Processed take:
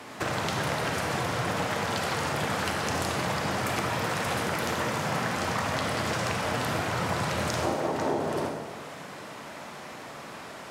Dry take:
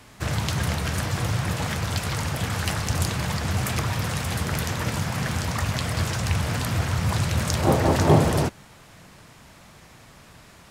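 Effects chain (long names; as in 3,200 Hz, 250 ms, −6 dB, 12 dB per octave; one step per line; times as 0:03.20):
high-pass filter 390 Hz 12 dB per octave
spectral tilt −2.5 dB per octave
downward compressor 10 to 1, threshold −36 dBFS, peak gain reduction 22 dB
convolution reverb RT60 1.4 s, pre-delay 28 ms, DRR 2 dB
level +8.5 dB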